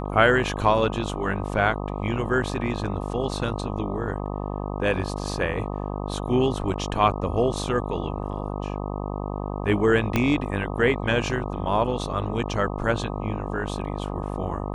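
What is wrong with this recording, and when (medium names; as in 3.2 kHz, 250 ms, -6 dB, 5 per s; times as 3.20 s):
buzz 50 Hz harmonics 25 -30 dBFS
10.16 s: pop -8 dBFS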